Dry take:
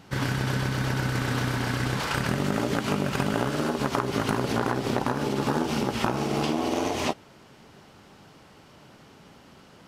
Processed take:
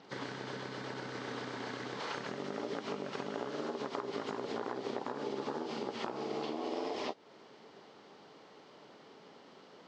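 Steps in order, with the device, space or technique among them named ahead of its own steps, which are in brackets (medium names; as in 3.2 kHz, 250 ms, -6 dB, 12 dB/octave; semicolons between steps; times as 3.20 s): hearing aid with frequency lowering (knee-point frequency compression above 3.6 kHz 1.5:1; compression 3:1, threshold -33 dBFS, peak gain reduction 10.5 dB; cabinet simulation 280–6400 Hz, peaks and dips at 440 Hz +5 dB, 1.5 kHz -4 dB, 2.6 kHz -5 dB); trim -3 dB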